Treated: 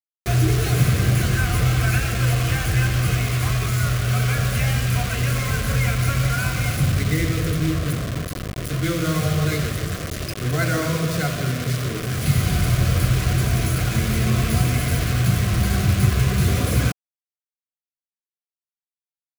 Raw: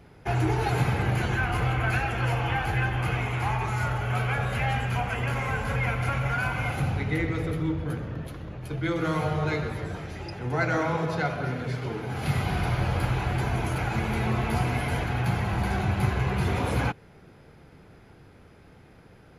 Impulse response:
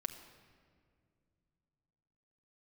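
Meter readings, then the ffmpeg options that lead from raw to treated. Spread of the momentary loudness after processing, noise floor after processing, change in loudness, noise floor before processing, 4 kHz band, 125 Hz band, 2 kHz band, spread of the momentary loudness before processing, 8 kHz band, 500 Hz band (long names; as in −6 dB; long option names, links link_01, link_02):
6 LU, below −85 dBFS, +6.5 dB, −52 dBFS, +10.0 dB, +8.0 dB, +3.0 dB, 6 LU, +17.0 dB, +2.5 dB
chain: -af "bass=frequency=250:gain=7,treble=frequency=4000:gain=10,acrusher=bits=4:mix=0:aa=0.000001,asuperstop=centerf=870:order=4:qfactor=3.2,volume=1.5dB"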